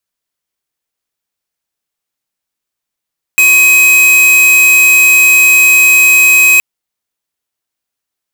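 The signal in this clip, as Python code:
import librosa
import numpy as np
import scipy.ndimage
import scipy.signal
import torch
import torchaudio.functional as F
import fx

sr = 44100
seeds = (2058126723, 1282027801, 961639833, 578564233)

y = fx.tone(sr, length_s=3.22, wave='square', hz=2530.0, level_db=-6.0)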